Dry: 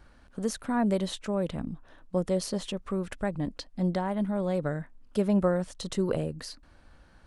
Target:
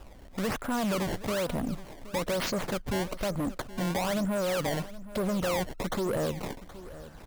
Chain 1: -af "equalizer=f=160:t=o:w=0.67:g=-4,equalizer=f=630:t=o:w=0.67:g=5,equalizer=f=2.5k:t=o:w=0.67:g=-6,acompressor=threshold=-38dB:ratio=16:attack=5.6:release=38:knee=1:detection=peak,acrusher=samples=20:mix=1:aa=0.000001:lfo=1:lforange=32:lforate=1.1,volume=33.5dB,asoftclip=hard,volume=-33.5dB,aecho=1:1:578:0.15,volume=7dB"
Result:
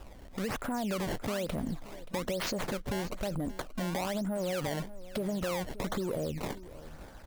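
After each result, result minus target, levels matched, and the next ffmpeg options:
compressor: peak gain reduction +9 dB; echo 0.194 s early
-af "equalizer=f=160:t=o:w=0.67:g=-4,equalizer=f=630:t=o:w=0.67:g=5,equalizer=f=2.5k:t=o:w=0.67:g=-6,acompressor=threshold=-28.5dB:ratio=16:attack=5.6:release=38:knee=1:detection=peak,acrusher=samples=20:mix=1:aa=0.000001:lfo=1:lforange=32:lforate=1.1,volume=33.5dB,asoftclip=hard,volume=-33.5dB,aecho=1:1:578:0.15,volume=7dB"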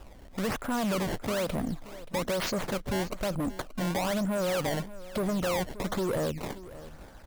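echo 0.194 s early
-af "equalizer=f=160:t=o:w=0.67:g=-4,equalizer=f=630:t=o:w=0.67:g=5,equalizer=f=2.5k:t=o:w=0.67:g=-6,acompressor=threshold=-28.5dB:ratio=16:attack=5.6:release=38:knee=1:detection=peak,acrusher=samples=20:mix=1:aa=0.000001:lfo=1:lforange=32:lforate=1.1,volume=33.5dB,asoftclip=hard,volume=-33.5dB,aecho=1:1:772:0.15,volume=7dB"

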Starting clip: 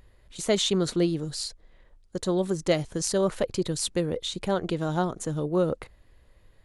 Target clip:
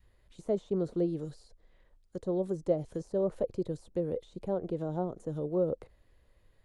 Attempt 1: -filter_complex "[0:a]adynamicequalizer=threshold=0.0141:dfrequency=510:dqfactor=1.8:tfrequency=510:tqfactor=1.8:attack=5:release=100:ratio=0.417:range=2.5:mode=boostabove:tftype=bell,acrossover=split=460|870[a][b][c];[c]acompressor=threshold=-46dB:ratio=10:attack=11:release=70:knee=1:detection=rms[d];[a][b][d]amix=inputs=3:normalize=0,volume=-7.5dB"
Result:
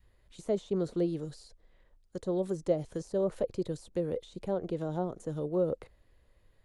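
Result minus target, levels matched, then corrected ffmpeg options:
compressor: peak gain reduction -7 dB
-filter_complex "[0:a]adynamicequalizer=threshold=0.0141:dfrequency=510:dqfactor=1.8:tfrequency=510:tqfactor=1.8:attack=5:release=100:ratio=0.417:range=2.5:mode=boostabove:tftype=bell,acrossover=split=460|870[a][b][c];[c]acompressor=threshold=-54dB:ratio=10:attack=11:release=70:knee=1:detection=rms[d];[a][b][d]amix=inputs=3:normalize=0,volume=-7.5dB"

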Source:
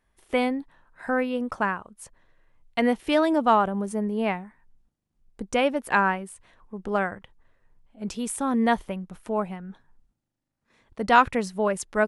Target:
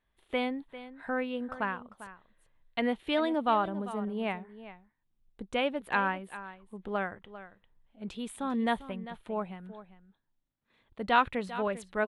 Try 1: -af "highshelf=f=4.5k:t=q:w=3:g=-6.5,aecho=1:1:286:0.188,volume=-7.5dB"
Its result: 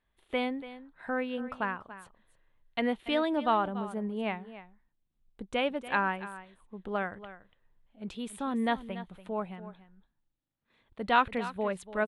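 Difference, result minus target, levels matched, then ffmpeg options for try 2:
echo 0.111 s early
-af "highshelf=f=4.5k:t=q:w=3:g=-6.5,aecho=1:1:397:0.188,volume=-7.5dB"

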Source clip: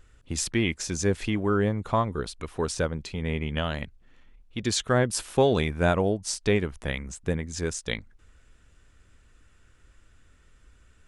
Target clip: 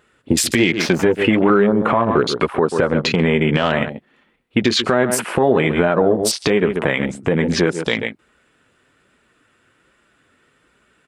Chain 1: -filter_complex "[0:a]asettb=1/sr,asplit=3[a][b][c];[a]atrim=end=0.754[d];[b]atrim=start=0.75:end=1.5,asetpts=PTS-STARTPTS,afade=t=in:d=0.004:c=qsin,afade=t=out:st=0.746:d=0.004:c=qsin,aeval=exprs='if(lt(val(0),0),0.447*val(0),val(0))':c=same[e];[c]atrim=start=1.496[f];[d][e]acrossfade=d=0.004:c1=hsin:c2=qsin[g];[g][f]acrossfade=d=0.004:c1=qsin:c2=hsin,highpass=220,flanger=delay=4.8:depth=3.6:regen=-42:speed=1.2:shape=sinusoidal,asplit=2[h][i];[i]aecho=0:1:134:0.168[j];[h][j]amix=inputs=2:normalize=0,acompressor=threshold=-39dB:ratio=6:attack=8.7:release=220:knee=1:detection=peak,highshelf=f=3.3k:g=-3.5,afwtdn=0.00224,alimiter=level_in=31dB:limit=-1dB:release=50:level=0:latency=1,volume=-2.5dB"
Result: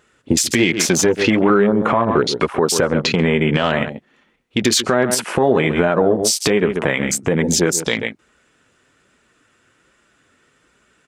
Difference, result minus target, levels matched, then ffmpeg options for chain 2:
8000 Hz band +6.0 dB
-filter_complex "[0:a]asettb=1/sr,asplit=3[a][b][c];[a]atrim=end=0.754[d];[b]atrim=start=0.75:end=1.5,asetpts=PTS-STARTPTS,afade=t=in:d=0.004:c=qsin,afade=t=out:st=0.746:d=0.004:c=qsin,aeval=exprs='if(lt(val(0),0),0.447*val(0),val(0))':c=same[e];[c]atrim=start=1.496[f];[d][e]acrossfade=d=0.004:c1=hsin:c2=qsin[g];[g][f]acrossfade=d=0.004:c1=qsin:c2=hsin,highpass=220,equalizer=f=6.2k:t=o:w=0.63:g=-8.5,flanger=delay=4.8:depth=3.6:regen=-42:speed=1.2:shape=sinusoidal,asplit=2[h][i];[i]aecho=0:1:134:0.168[j];[h][j]amix=inputs=2:normalize=0,acompressor=threshold=-39dB:ratio=6:attack=8.7:release=220:knee=1:detection=peak,highshelf=f=3.3k:g=-3.5,afwtdn=0.00224,alimiter=level_in=31dB:limit=-1dB:release=50:level=0:latency=1,volume=-2.5dB"

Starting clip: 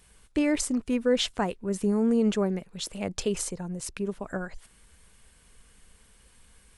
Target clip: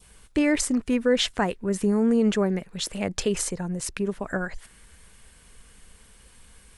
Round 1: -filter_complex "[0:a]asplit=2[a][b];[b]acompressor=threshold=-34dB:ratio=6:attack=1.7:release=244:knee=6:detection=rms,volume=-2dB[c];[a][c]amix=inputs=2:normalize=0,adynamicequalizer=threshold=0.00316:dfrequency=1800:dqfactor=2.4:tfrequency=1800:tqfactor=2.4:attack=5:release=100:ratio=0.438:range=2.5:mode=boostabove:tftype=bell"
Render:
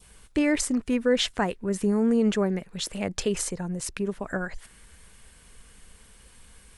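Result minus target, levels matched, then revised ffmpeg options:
compressor: peak gain reduction +6.5 dB
-filter_complex "[0:a]asplit=2[a][b];[b]acompressor=threshold=-26dB:ratio=6:attack=1.7:release=244:knee=6:detection=rms,volume=-2dB[c];[a][c]amix=inputs=2:normalize=0,adynamicequalizer=threshold=0.00316:dfrequency=1800:dqfactor=2.4:tfrequency=1800:tqfactor=2.4:attack=5:release=100:ratio=0.438:range=2.5:mode=boostabove:tftype=bell"

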